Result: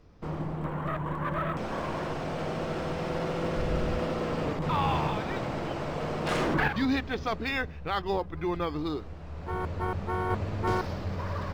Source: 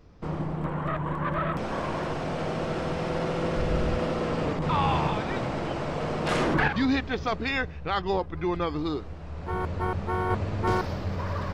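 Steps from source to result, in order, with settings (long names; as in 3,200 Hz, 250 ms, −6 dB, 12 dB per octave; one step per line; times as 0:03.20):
hum removal 61.22 Hz, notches 4
level −2.5 dB
IMA ADPCM 176 kbit/s 44,100 Hz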